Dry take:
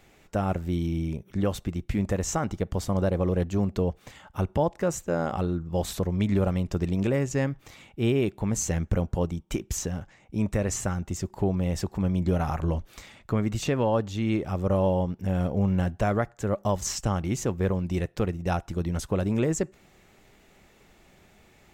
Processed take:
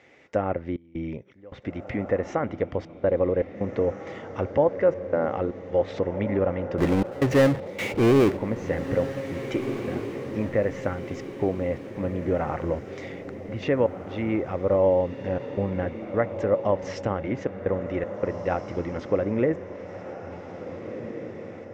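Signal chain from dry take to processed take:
treble cut that deepens with the level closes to 1,900 Hz, closed at −23 dBFS
loudspeaker in its box 120–5,700 Hz, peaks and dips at 180 Hz −8 dB, 280 Hz +4 dB, 520 Hz +9 dB, 2,000 Hz +10 dB, 4,200 Hz −5 dB
0:06.78–0:08.37: power curve on the samples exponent 0.5
gate pattern "xxxx.xx.xxx" 79 BPM −24 dB
feedback delay with all-pass diffusion 1,744 ms, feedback 45%, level −10 dB

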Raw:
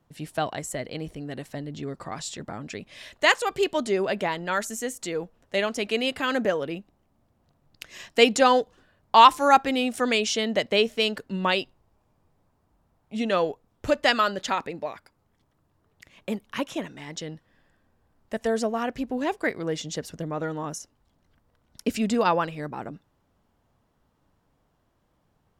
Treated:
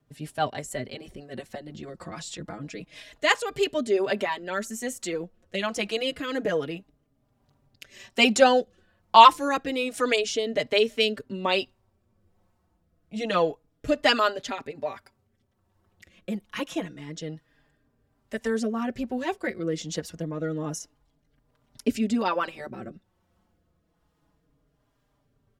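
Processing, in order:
rotating-speaker cabinet horn 6.3 Hz, later 1.2 Hz, at 0:02.98
barber-pole flanger 4.5 ms −0.28 Hz
level +4 dB

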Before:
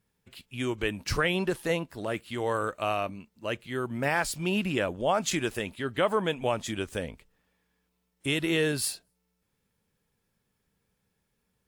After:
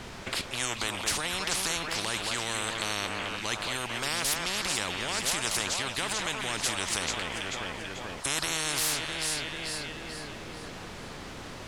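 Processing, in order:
in parallel at +3 dB: brickwall limiter −25 dBFS, peak gain reduction 11 dB
on the sum: background noise pink −60 dBFS
high-frequency loss of the air 74 metres
delay that swaps between a low-pass and a high-pass 219 ms, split 2,100 Hz, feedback 62%, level −11 dB
every bin compressed towards the loudest bin 10 to 1
level −2 dB

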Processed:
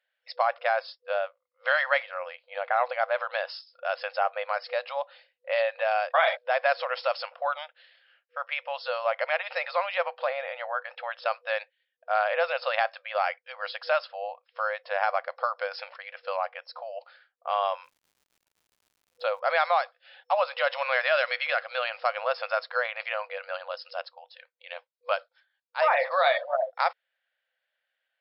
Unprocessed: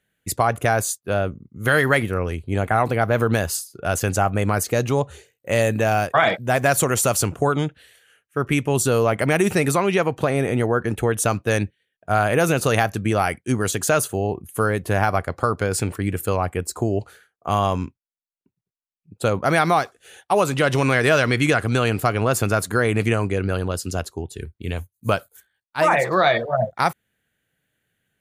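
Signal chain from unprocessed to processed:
brick-wall band-pass 490–5,400 Hz
0:17.83–0:19.39: surface crackle 160 per second −49 dBFS
0:21.09–0:21.86: dynamic equaliser 980 Hz, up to −6 dB, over −38 dBFS, Q 3.5
level −5 dB

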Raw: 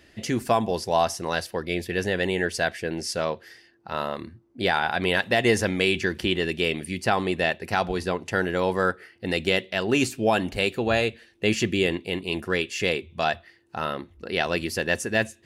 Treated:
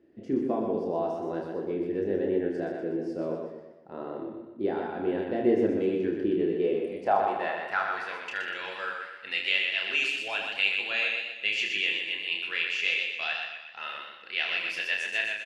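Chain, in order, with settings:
band-pass filter sweep 330 Hz → 2,600 Hz, 0:06.38–0:08.32
reverse bouncing-ball delay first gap 30 ms, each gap 1.5×, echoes 5
feedback echo with a swinging delay time 123 ms, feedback 40%, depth 59 cents, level −5 dB

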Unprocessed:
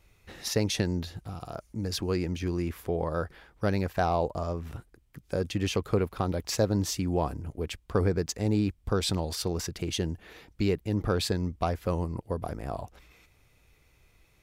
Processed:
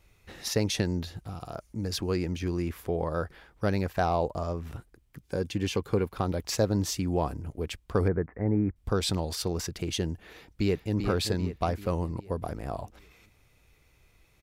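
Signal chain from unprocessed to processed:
0:05.26–0:06.13: notch comb filter 640 Hz
0:08.08–0:08.76: Butterworth low-pass 2,100 Hz 72 dB per octave
0:10.29–0:10.95: delay throw 390 ms, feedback 50%, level −7 dB

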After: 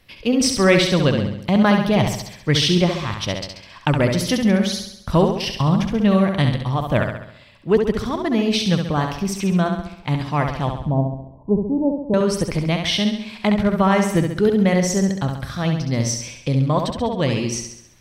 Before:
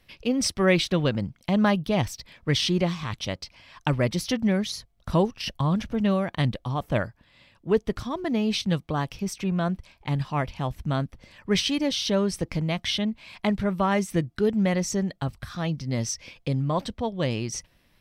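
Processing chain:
0:10.69–0:12.14: Butterworth low-pass 1,000 Hz 96 dB per octave
flutter between parallel walls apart 11.6 metres, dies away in 0.72 s
level +5.5 dB

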